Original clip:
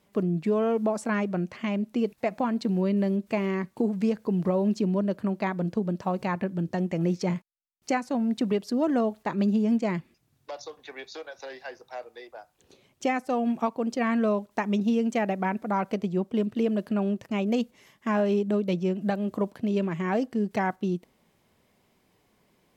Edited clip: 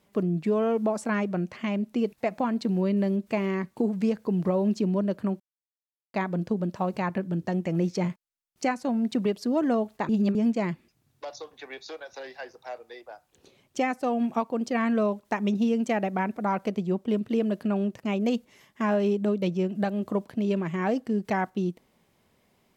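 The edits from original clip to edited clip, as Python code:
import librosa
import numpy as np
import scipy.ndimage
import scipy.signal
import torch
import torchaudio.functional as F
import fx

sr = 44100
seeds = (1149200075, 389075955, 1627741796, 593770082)

y = fx.edit(x, sr, fx.insert_silence(at_s=5.4, length_s=0.74),
    fx.reverse_span(start_s=9.35, length_s=0.26), tone=tone)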